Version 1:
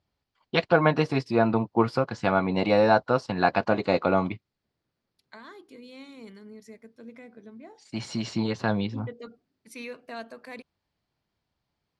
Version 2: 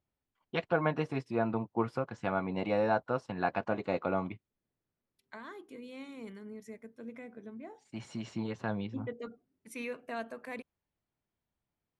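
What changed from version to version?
first voice −9.0 dB
master: add parametric band 4,600 Hz −10.5 dB 0.59 octaves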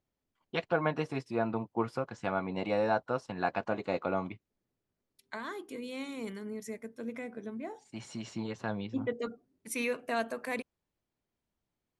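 second voice +6.5 dB
master: add bass and treble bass −2 dB, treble +6 dB

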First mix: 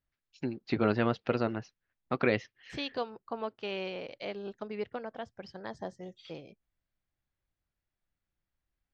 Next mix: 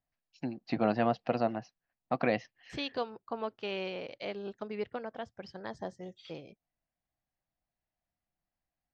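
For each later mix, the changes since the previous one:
first voice: add loudspeaker in its box 100–6,200 Hz, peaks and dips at 100 Hz −7 dB, 400 Hz −10 dB, 710 Hz +10 dB, 1,400 Hz −6 dB, 2,200 Hz −4 dB, 3,500 Hz −7 dB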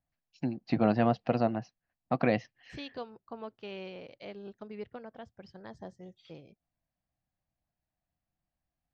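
second voice −7.5 dB
master: add low-shelf EQ 220 Hz +9 dB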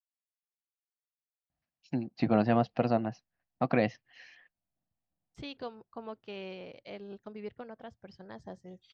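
first voice: entry +1.50 s
second voice: entry +2.65 s

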